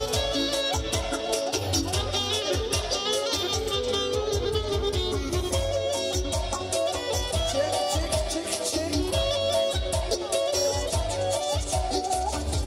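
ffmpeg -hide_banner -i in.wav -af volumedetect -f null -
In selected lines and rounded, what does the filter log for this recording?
mean_volume: -26.5 dB
max_volume: -12.7 dB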